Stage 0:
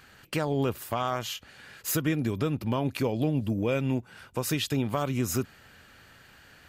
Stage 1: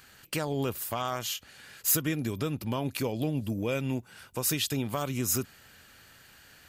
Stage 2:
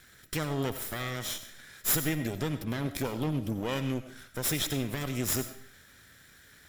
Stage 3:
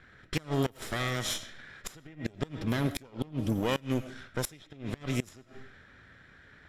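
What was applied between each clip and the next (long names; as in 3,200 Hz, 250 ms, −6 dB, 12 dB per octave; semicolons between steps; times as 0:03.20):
high-shelf EQ 4,400 Hz +11 dB; level −3.5 dB
lower of the sound and its delayed copy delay 0.54 ms; on a send at −10.5 dB: convolution reverb RT60 0.40 s, pre-delay 50 ms
gate with flip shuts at −21 dBFS, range −24 dB; low-pass that shuts in the quiet parts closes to 1,900 Hz, open at −29 dBFS; level +3.5 dB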